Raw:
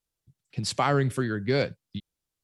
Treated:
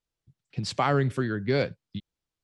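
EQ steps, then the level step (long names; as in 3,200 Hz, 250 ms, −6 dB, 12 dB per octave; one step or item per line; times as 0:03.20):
high-frequency loss of the air 68 metres
0.0 dB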